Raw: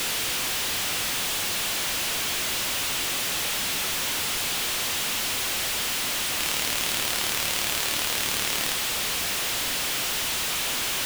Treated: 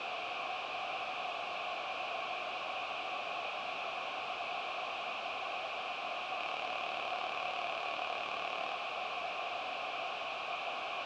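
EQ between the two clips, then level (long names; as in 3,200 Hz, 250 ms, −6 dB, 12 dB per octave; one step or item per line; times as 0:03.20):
formant filter a
high-frequency loss of the air 160 metres
low-shelf EQ 93 Hz +5.5 dB
+5.5 dB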